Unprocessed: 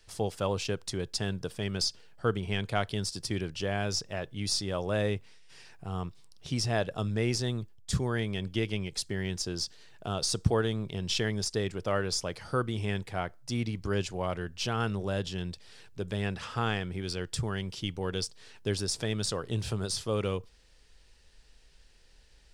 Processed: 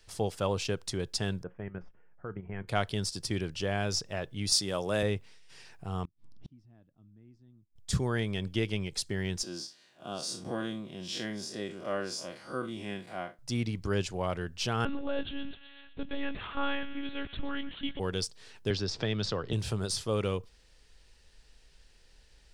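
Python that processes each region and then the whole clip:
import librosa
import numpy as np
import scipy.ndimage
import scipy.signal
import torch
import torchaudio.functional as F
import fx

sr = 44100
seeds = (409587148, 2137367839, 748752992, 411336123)

y = fx.chain(x, sr, fx.cheby2_lowpass(hz=3900.0, order=4, stop_db=40),
    fx.level_steps(step_db=11),
    fx.comb_fb(f0_hz=180.0, decay_s=0.16, harmonics='all', damping=0.0, mix_pct=50), at=(1.43, 2.68))
y = fx.chain(y, sr, fx.highpass(hz=120.0, slope=12),
    fx.high_shelf(hz=5400.0, db=9.5), at=(4.52, 5.03))
y = fx.chain(y, sr, fx.lowpass(hz=1000.0, slope=6),
    fx.low_shelf_res(hz=360.0, db=6.5, q=3.0),
    fx.gate_flip(shuts_db=-32.0, range_db=-34), at=(6.05, 7.76))
y = fx.chain(y, sr, fx.spec_blur(span_ms=94.0),
    fx.cheby1_highpass(hz=250.0, order=2),
    fx.notch_comb(f0_hz=440.0), at=(9.43, 13.39))
y = fx.chain(y, sr, fx.echo_wet_highpass(ms=126, feedback_pct=70, hz=1600.0, wet_db=-11.5),
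    fx.lpc_monotone(seeds[0], pitch_hz=280.0, order=10), at=(14.85, 18.0))
y = fx.chain(y, sr, fx.lowpass(hz=5200.0, slope=24),
    fx.band_squash(depth_pct=70), at=(18.7, 19.53))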